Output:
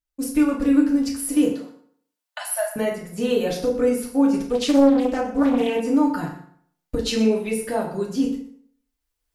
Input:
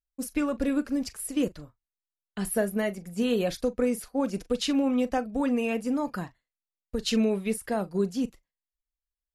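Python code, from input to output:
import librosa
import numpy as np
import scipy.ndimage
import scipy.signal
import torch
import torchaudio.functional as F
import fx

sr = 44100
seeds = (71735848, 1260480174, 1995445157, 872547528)

p1 = fx.recorder_agc(x, sr, target_db=-19.0, rise_db_per_s=10.0, max_gain_db=30)
p2 = fx.brickwall_highpass(p1, sr, low_hz=540.0, at=(1.47, 2.76))
p3 = p2 + fx.echo_single(p2, sr, ms=123, db=-16.0, dry=0)
p4 = fx.rev_fdn(p3, sr, rt60_s=0.61, lf_ratio=0.95, hf_ratio=0.75, size_ms=20.0, drr_db=-2.0)
y = fx.doppler_dist(p4, sr, depth_ms=0.68, at=(4.53, 5.8))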